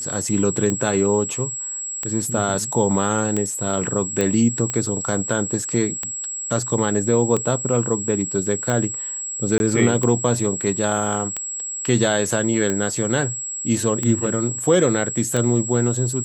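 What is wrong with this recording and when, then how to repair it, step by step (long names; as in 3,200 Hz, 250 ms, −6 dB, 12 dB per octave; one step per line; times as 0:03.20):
scratch tick 45 rpm −10 dBFS
whistle 7,700 Hz −26 dBFS
0:04.21: click −7 dBFS
0:09.58–0:09.60: drop-out 21 ms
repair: click removal
notch filter 7,700 Hz, Q 30
repair the gap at 0:09.58, 21 ms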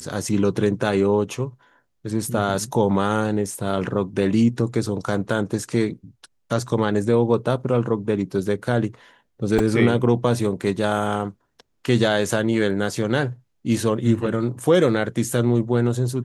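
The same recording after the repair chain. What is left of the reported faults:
none of them is left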